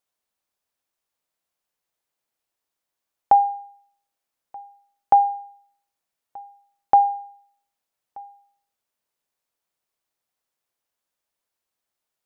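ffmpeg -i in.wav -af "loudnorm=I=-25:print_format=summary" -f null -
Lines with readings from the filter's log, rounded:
Input Integrated:    -19.8 LUFS
Input True Peak:      -5.8 dBTP
Input LRA:             3.0 LU
Input Threshold:     -34.7 LUFS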